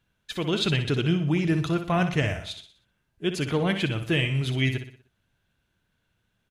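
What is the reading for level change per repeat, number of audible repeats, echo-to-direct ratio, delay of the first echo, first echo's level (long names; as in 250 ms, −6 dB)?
−7.0 dB, 4, −8.5 dB, 61 ms, −9.5 dB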